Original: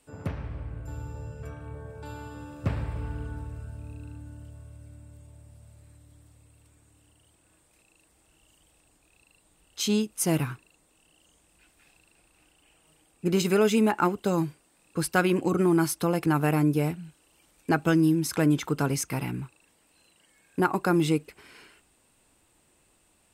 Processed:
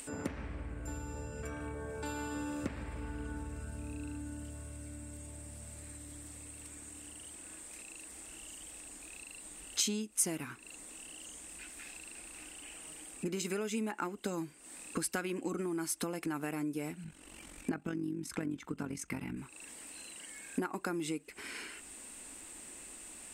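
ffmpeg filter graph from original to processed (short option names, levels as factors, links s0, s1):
-filter_complex "[0:a]asettb=1/sr,asplit=3[s0][s1][s2];[s0]atrim=end=17.044[s3];[s1]atrim=start=17.04:end=19.37,asetpts=PTS-STARTPTS,afade=t=in:d=0.004:c=qsin,afade=t=out:st=2.326:d=0.004:c=qsin,tremolo=f=46:d=0.667,bass=f=250:g=8,treble=f=4000:g=-7[s4];[s2]atrim=start=19.366[s5];[s3][s4]acrossfade=d=0.004:c1=hsin:c2=qsin[s6];[s6][s5]acrossfade=d=0.004:c1=qsin:c2=hsin,acompressor=threshold=0.0141:ratio=16,equalizer=f=125:t=o:w=1:g=-10,equalizer=f=250:t=o:w=1:g=7,equalizer=f=2000:t=o:w=1:g=6,equalizer=f=8000:t=o:w=1:g=11,acompressor=mode=upward:threshold=0.00708:ratio=2.5,volume=1.26"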